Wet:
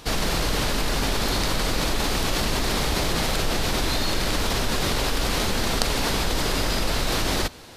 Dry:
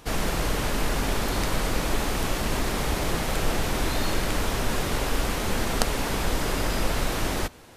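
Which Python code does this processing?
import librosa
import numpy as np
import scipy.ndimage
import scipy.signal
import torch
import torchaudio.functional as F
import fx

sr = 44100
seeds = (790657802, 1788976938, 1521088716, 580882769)

p1 = fx.peak_eq(x, sr, hz=4300.0, db=7.0, octaves=0.95)
p2 = fx.over_compress(p1, sr, threshold_db=-27.0, ratio=-1.0)
p3 = p1 + (p2 * librosa.db_to_amplitude(-1.0))
y = p3 * librosa.db_to_amplitude(-3.0)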